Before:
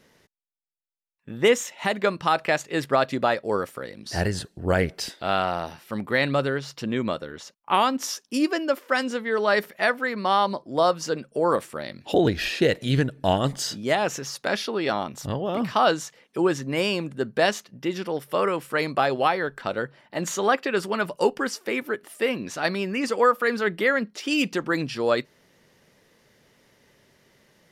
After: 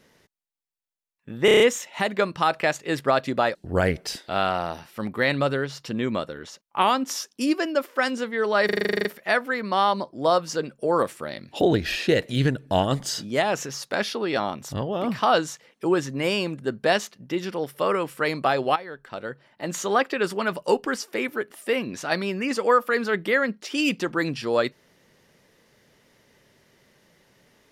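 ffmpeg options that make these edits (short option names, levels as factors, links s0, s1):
-filter_complex "[0:a]asplit=18[s0][s1][s2][s3][s4][s5][s6][s7][s8][s9][s10][s11][s12][s13][s14][s15][s16][s17];[s0]atrim=end=1.482[s18];[s1]atrim=start=1.448:end=1.482[s19];[s2]atrim=start=1.448:end=1.482[s20];[s3]atrim=start=1.448:end=1.482[s21];[s4]atrim=start=1.448:end=1.482[s22];[s5]atrim=start=1.448:end=3.402[s23];[s6]atrim=start=4.478:end=9.622[s24];[s7]atrim=start=9.578:end=9.622[s25];[s8]atrim=start=9.578:end=9.622[s26];[s9]atrim=start=9.578:end=9.622[s27];[s10]atrim=start=9.578:end=9.622[s28];[s11]atrim=start=9.578:end=9.622[s29];[s12]atrim=start=9.578:end=9.622[s30];[s13]atrim=start=9.578:end=9.622[s31];[s14]atrim=start=9.578:end=9.622[s32];[s15]atrim=start=9.578:end=9.622[s33];[s16]atrim=start=9.578:end=19.29,asetpts=PTS-STARTPTS,afade=t=out:st=9.708:d=0.004:c=hsin:silence=0.199526[s34];[s17]atrim=start=19.29,asetpts=PTS-STARTPTS,afade=t=in:d=1.21:silence=0.199526[s35];[s18][s19]acrossfade=d=0.004:c1=hsin:c2=hsin[s36];[s36][s20]acrossfade=d=0.004:c1=hsin:c2=hsin[s37];[s37][s21]acrossfade=d=0.004:c1=hsin:c2=hsin[s38];[s38][s22]acrossfade=d=0.004:c1=hsin:c2=hsin[s39];[s39][s23]acrossfade=d=0.004:c1=hsin:c2=hsin[s40];[s40][s24]acrossfade=d=0.004:c1=hsin:c2=hsin[s41];[s41][s25]acrossfade=d=0.004:c1=hsin:c2=hsin[s42];[s42][s26]acrossfade=d=0.004:c1=hsin:c2=hsin[s43];[s43][s27]acrossfade=d=0.004:c1=hsin:c2=hsin[s44];[s44][s28]acrossfade=d=0.004:c1=hsin:c2=hsin[s45];[s45][s29]acrossfade=d=0.004:c1=hsin:c2=hsin[s46];[s46][s30]acrossfade=d=0.004:c1=hsin:c2=hsin[s47];[s47][s31]acrossfade=d=0.004:c1=hsin:c2=hsin[s48];[s48][s32]acrossfade=d=0.004:c1=hsin:c2=hsin[s49];[s49][s33]acrossfade=d=0.004:c1=hsin:c2=hsin[s50];[s34][s35]concat=n=2:v=0:a=1[s51];[s50][s51]acrossfade=d=0.004:c1=hsin:c2=hsin"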